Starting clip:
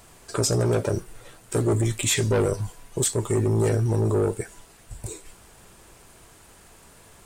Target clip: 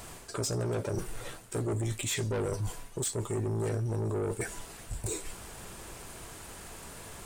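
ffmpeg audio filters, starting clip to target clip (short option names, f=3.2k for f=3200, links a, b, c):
-af "areverse,acompressor=threshold=-34dB:ratio=6,areverse,asoftclip=type=tanh:threshold=-31.5dB,volume=5.5dB"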